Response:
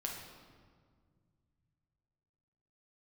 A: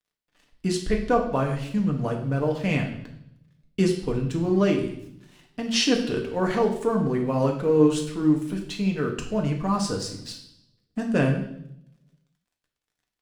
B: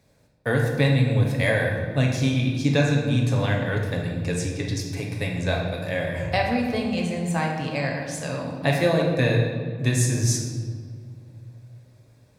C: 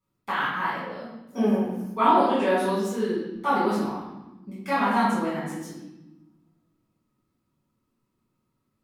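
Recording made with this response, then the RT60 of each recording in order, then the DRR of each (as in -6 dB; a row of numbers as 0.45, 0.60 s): B; 0.75, 1.9, 1.0 s; 0.5, -1.0, -10.5 dB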